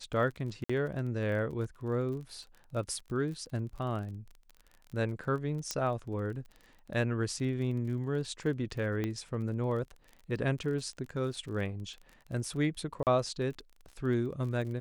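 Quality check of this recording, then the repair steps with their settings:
surface crackle 32 per second −41 dBFS
0:00.64–0:00.69: drop-out 55 ms
0:05.71: click −17 dBFS
0:09.04: click −21 dBFS
0:13.03–0:13.07: drop-out 38 ms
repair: click removal
repair the gap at 0:00.64, 55 ms
repair the gap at 0:13.03, 38 ms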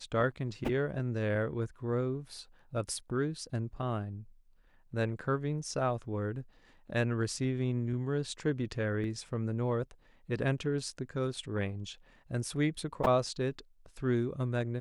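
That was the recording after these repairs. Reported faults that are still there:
0:09.04: click

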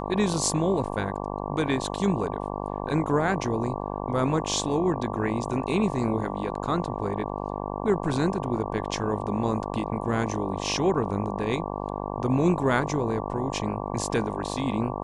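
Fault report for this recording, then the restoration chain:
mains buzz 50 Hz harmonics 23 −32 dBFS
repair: hum removal 50 Hz, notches 23

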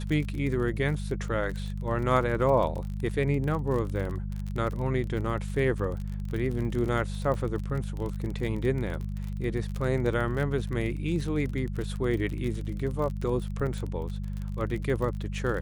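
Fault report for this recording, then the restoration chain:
surface crackle 34 per second −32 dBFS
mains hum 50 Hz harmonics 4 −33 dBFS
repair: click removal
hum removal 50 Hz, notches 4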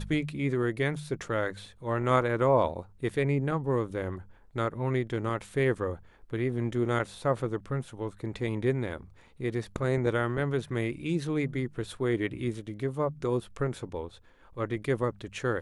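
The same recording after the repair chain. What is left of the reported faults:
none of them is left

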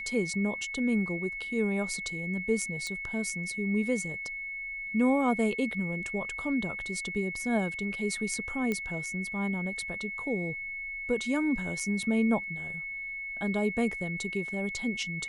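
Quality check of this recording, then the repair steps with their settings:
whistle 2,200 Hz −35 dBFS
0:02.87: click −23 dBFS
0:08.72: click −18 dBFS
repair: click removal
notch filter 2,200 Hz, Q 30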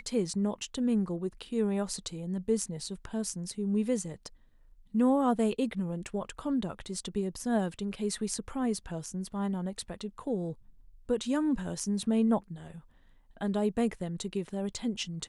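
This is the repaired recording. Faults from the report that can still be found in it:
0:02.87: click

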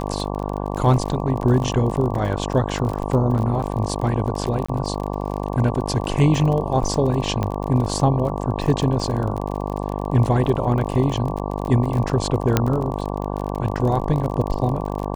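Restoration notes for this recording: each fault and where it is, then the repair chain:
mains buzz 50 Hz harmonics 23 −26 dBFS
surface crackle 34 per second −26 dBFS
0:04.66–0:04.68: drop-out 25 ms
0:07.43: click −11 dBFS
0:12.57: click −2 dBFS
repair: click removal
hum removal 50 Hz, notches 23
repair the gap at 0:04.66, 25 ms

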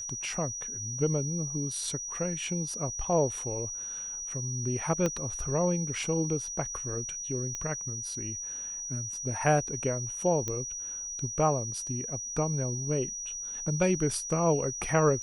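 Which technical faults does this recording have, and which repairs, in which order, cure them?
whistle 5,800 Hz −35 dBFS
0:05.06: click −15 dBFS
0:07.55: click −21 dBFS
0:10.48: click −18 dBFS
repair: click removal
notch filter 5,800 Hz, Q 30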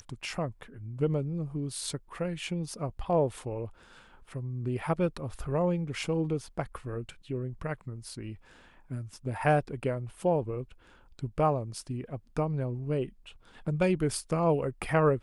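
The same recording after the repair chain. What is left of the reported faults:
0:05.06: click

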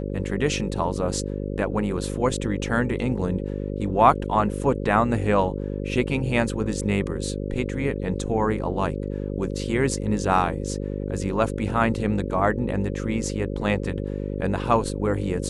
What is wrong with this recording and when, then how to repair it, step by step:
mains buzz 50 Hz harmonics 11 −29 dBFS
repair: hum removal 50 Hz, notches 11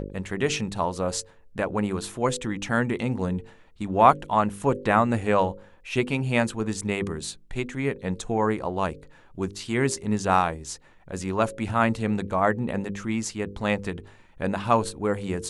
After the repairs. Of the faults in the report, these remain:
none of them is left

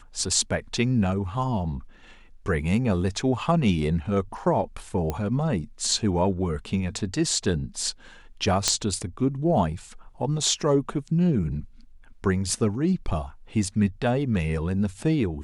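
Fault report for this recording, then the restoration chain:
0:05.10: click −14 dBFS
0:08.68: click −5 dBFS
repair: click removal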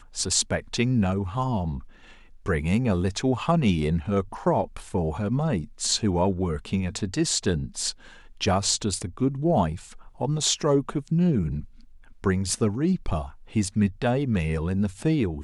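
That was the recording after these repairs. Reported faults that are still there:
none of them is left

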